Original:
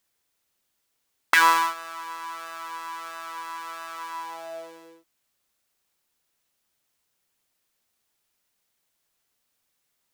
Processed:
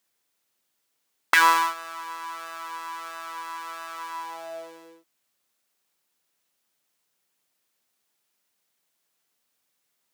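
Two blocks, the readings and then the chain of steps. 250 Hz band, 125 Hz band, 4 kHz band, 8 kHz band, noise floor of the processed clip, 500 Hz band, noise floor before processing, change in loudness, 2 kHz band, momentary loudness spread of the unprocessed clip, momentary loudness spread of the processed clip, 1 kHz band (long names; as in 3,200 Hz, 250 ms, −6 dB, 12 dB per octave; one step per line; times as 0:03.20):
0.0 dB, can't be measured, 0.0 dB, 0.0 dB, −76 dBFS, 0.0 dB, −76 dBFS, 0.0 dB, 0.0 dB, 19 LU, 19 LU, 0.0 dB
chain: high-pass filter 140 Hz 12 dB per octave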